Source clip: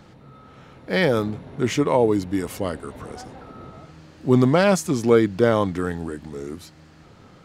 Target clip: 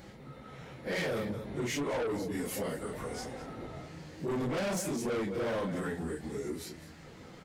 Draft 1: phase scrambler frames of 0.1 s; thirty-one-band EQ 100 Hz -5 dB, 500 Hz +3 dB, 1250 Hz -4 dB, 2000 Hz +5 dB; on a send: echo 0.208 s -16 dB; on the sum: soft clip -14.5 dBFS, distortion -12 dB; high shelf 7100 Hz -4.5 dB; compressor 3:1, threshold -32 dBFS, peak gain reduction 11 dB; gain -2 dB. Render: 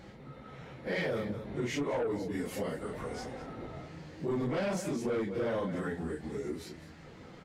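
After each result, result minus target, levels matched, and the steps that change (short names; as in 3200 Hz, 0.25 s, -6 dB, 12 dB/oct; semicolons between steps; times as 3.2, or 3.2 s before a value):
8000 Hz band -6.5 dB; soft clip: distortion -5 dB
change: high shelf 7100 Hz +7 dB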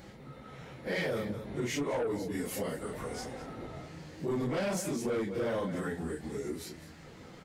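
soft clip: distortion -5 dB
change: soft clip -20.5 dBFS, distortion -7 dB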